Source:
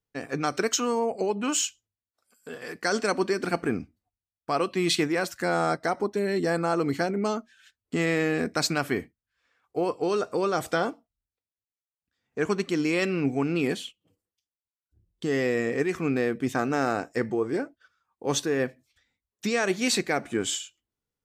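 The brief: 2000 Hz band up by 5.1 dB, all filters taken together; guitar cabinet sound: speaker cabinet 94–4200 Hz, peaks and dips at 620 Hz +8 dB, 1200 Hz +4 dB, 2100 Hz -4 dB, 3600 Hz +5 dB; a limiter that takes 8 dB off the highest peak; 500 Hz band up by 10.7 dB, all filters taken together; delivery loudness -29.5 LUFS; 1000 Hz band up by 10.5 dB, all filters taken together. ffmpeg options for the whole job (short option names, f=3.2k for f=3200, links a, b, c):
-af "equalizer=f=500:t=o:g=8.5,equalizer=f=1k:t=o:g=6,equalizer=f=2k:t=o:g=4.5,alimiter=limit=-11.5dB:level=0:latency=1,highpass=94,equalizer=f=620:t=q:w=4:g=8,equalizer=f=1.2k:t=q:w=4:g=4,equalizer=f=2.1k:t=q:w=4:g=-4,equalizer=f=3.6k:t=q:w=4:g=5,lowpass=f=4.2k:w=0.5412,lowpass=f=4.2k:w=1.3066,volume=-8dB"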